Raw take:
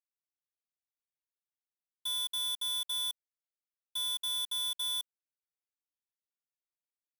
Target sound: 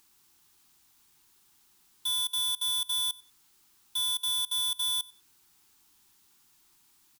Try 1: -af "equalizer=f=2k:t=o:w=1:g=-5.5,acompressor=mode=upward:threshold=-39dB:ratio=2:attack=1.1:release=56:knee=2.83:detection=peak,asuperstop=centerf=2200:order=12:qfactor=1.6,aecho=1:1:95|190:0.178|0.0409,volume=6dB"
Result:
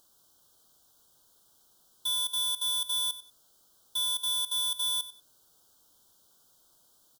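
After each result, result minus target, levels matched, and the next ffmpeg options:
500 Hz band +14.5 dB; echo-to-direct +7 dB
-af "equalizer=f=2k:t=o:w=1:g=-5.5,acompressor=mode=upward:threshold=-39dB:ratio=2:attack=1.1:release=56:knee=2.83:detection=peak,asuperstop=centerf=560:order=12:qfactor=1.6,aecho=1:1:95|190:0.178|0.0409,volume=6dB"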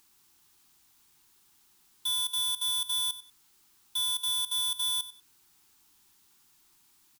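echo-to-direct +7 dB
-af "equalizer=f=2k:t=o:w=1:g=-5.5,acompressor=mode=upward:threshold=-39dB:ratio=2:attack=1.1:release=56:knee=2.83:detection=peak,asuperstop=centerf=560:order=12:qfactor=1.6,aecho=1:1:95|190:0.0794|0.0183,volume=6dB"

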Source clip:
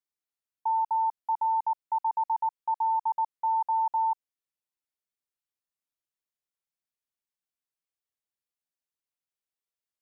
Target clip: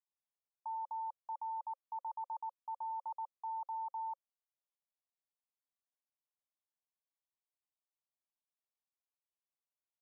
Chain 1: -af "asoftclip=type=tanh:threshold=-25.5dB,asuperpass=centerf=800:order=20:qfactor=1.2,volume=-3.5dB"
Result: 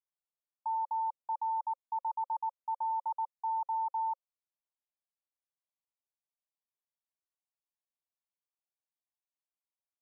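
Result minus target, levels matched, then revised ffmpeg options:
soft clip: distortion -9 dB
-af "asoftclip=type=tanh:threshold=-35dB,asuperpass=centerf=800:order=20:qfactor=1.2,volume=-3.5dB"

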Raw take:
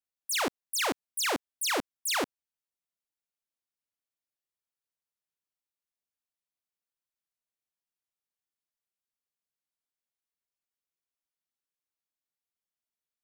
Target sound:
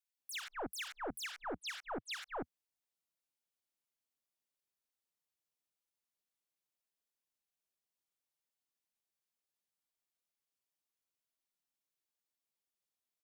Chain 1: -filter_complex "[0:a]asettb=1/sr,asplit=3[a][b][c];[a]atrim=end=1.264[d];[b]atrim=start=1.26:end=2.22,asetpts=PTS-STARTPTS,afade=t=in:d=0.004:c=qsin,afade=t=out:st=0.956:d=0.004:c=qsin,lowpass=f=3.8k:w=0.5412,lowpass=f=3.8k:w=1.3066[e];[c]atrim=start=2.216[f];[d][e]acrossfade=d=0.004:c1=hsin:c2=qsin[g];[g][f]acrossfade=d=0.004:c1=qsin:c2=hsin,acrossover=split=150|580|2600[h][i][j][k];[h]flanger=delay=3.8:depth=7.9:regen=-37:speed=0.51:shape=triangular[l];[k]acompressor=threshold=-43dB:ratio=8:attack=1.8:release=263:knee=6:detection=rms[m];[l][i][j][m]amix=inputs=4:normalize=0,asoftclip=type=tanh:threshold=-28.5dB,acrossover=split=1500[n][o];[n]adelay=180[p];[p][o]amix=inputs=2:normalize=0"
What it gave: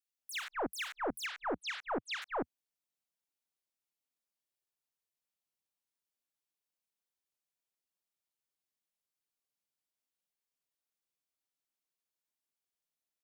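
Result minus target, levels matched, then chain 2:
soft clip: distortion -6 dB
-filter_complex "[0:a]asettb=1/sr,asplit=3[a][b][c];[a]atrim=end=1.264[d];[b]atrim=start=1.26:end=2.22,asetpts=PTS-STARTPTS,afade=t=in:d=0.004:c=qsin,afade=t=out:st=0.956:d=0.004:c=qsin,lowpass=f=3.8k:w=0.5412,lowpass=f=3.8k:w=1.3066[e];[c]atrim=start=2.216[f];[d][e]acrossfade=d=0.004:c1=hsin:c2=qsin[g];[g][f]acrossfade=d=0.004:c1=qsin:c2=hsin,acrossover=split=150|580|2600[h][i][j][k];[h]flanger=delay=3.8:depth=7.9:regen=-37:speed=0.51:shape=triangular[l];[k]acompressor=threshold=-43dB:ratio=8:attack=1.8:release=263:knee=6:detection=rms[m];[l][i][j][m]amix=inputs=4:normalize=0,asoftclip=type=tanh:threshold=-36.5dB,acrossover=split=1500[n][o];[n]adelay=180[p];[p][o]amix=inputs=2:normalize=0"

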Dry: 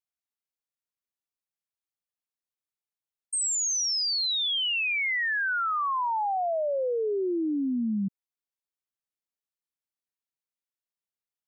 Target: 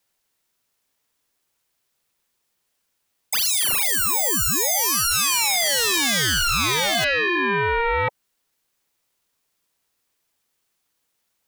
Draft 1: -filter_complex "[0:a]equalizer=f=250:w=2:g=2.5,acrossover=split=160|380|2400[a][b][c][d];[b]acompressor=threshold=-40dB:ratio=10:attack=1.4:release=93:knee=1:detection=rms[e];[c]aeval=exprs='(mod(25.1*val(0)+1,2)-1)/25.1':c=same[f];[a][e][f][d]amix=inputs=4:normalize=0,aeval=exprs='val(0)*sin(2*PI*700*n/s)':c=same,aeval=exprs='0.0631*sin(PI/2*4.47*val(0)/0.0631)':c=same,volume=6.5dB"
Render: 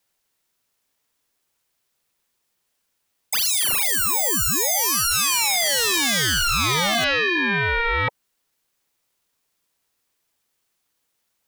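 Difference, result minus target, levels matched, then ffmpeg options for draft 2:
compressor: peak gain reduction -7 dB
-filter_complex "[0:a]equalizer=f=250:w=2:g=2.5,acrossover=split=160|380|2400[a][b][c][d];[b]acompressor=threshold=-47.5dB:ratio=10:attack=1.4:release=93:knee=1:detection=rms[e];[c]aeval=exprs='(mod(25.1*val(0)+1,2)-1)/25.1':c=same[f];[a][e][f][d]amix=inputs=4:normalize=0,aeval=exprs='val(0)*sin(2*PI*700*n/s)':c=same,aeval=exprs='0.0631*sin(PI/2*4.47*val(0)/0.0631)':c=same,volume=6.5dB"

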